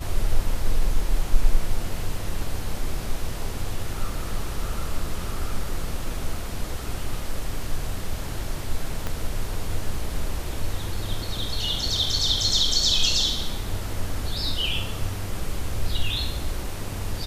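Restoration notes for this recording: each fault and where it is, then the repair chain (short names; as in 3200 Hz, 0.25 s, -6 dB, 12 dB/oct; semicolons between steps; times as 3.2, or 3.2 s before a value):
9.07 pop -14 dBFS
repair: de-click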